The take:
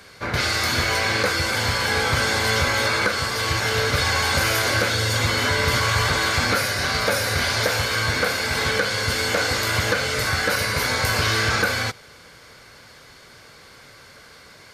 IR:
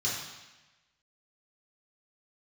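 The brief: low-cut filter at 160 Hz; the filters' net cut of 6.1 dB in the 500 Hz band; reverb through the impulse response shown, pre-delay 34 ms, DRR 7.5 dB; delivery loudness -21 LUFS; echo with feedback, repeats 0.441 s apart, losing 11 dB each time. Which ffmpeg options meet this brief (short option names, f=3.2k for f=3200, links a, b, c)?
-filter_complex "[0:a]highpass=160,equalizer=f=500:t=o:g=-7,aecho=1:1:441|882|1323:0.282|0.0789|0.0221,asplit=2[a][b];[1:a]atrim=start_sample=2205,adelay=34[c];[b][c]afir=irnorm=-1:irlink=0,volume=-14.5dB[d];[a][d]amix=inputs=2:normalize=0,volume=-1dB"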